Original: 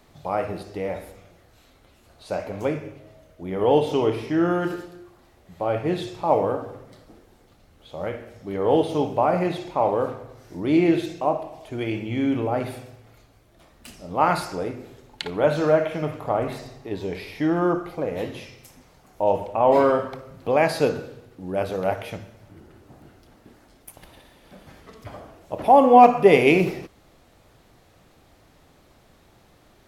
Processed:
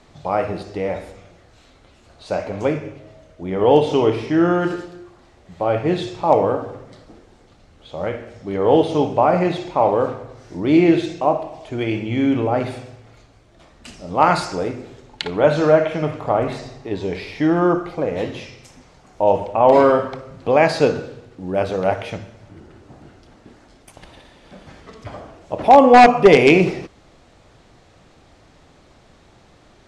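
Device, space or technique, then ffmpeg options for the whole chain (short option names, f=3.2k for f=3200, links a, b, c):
synthesiser wavefolder: -filter_complex "[0:a]asettb=1/sr,asplit=3[a][b][c];[a]atrim=end=14.074[d];[b]atrim=start=14.07:end=14.81,asetpts=PTS-STARTPTS,afade=t=in:d=0.004:c=qsin,afade=t=out:st=0.736:d=0.004:c=qsin,equalizer=f=8.1k:t=o:w=1.4:g=4[e];[c]atrim=start=14.806[f];[d][e]acrossfade=d=0.004:c1=hsin:c2=qsin[g];[g][f]acrossfade=d=0.004:c1=qsin:c2=hsin,aeval=exprs='0.473*(abs(mod(val(0)/0.473+3,4)-2)-1)':c=same,lowpass=f=8.2k:w=0.5412,lowpass=f=8.2k:w=1.3066,volume=5dB"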